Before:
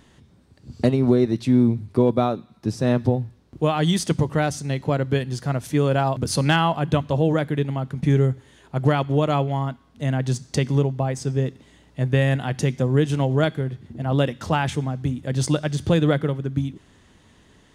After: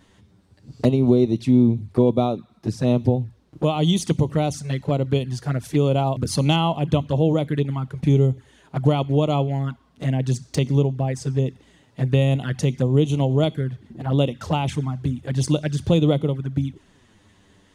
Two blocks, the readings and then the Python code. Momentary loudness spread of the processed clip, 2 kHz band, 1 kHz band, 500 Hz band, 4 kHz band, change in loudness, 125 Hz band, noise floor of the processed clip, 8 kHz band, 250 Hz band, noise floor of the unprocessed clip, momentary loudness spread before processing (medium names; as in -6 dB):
9 LU, -6.5 dB, -2.0 dB, 0.0 dB, +0.5 dB, +0.5 dB, +1.0 dB, -57 dBFS, -1.5 dB, +1.0 dB, -55 dBFS, 8 LU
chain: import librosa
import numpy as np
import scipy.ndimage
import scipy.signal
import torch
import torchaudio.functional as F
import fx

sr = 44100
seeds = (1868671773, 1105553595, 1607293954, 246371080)

y = fx.env_flanger(x, sr, rest_ms=11.1, full_db=-17.5)
y = y * librosa.db_to_amplitude(1.5)